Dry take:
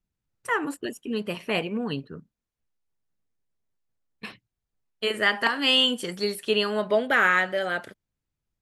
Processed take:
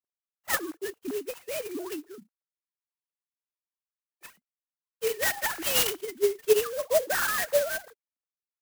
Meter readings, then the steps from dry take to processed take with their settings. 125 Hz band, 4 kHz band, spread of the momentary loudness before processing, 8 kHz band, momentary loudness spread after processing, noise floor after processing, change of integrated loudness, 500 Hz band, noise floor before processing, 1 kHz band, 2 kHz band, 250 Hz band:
-12.5 dB, -9.5 dB, 15 LU, +11.5 dB, 12 LU, under -85 dBFS, -3.0 dB, 0.0 dB, under -85 dBFS, -7.0 dB, -7.5 dB, -9.5 dB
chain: sine-wave speech; clock jitter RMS 0.073 ms; gain -3 dB

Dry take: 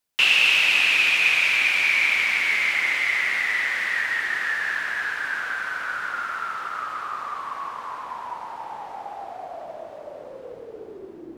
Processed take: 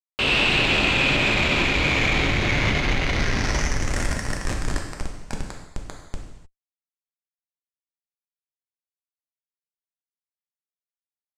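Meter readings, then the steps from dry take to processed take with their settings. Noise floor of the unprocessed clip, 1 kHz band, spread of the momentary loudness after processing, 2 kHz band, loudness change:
-41 dBFS, -1.5 dB, 19 LU, -4.5 dB, -0.5 dB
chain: Schmitt trigger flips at -18 dBFS; low-pass sweep 3900 Hz -> 7800 Hz, 3.06–3.93; non-linear reverb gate 0.33 s falling, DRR 0.5 dB

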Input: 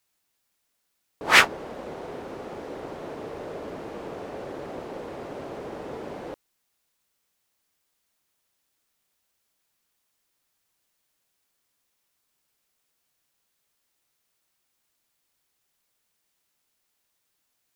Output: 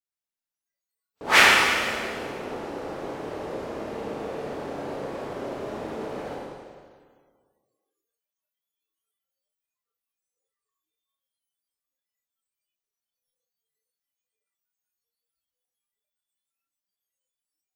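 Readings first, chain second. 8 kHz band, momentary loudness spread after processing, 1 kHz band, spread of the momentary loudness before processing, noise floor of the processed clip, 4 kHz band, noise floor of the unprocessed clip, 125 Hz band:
+3.5 dB, 19 LU, +3.5 dB, 20 LU, under -85 dBFS, +3.5 dB, -76 dBFS, +2.5 dB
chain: Schroeder reverb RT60 1.8 s, combs from 28 ms, DRR -4.5 dB; spectral noise reduction 22 dB; gain -2.5 dB

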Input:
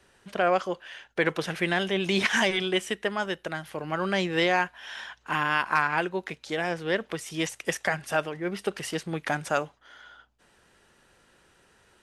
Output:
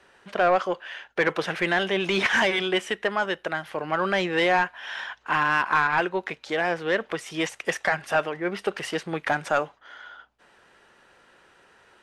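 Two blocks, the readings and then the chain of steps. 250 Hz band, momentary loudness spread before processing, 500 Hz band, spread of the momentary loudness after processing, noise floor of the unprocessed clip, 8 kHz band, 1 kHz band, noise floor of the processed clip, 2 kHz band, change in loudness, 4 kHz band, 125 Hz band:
+0.5 dB, 11 LU, +3.0 dB, 11 LU, -62 dBFS, -2.5 dB, +4.0 dB, -59 dBFS, +3.5 dB, +2.5 dB, +1.0 dB, -1.5 dB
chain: overdrive pedal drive 14 dB, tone 1800 Hz, clips at -9 dBFS

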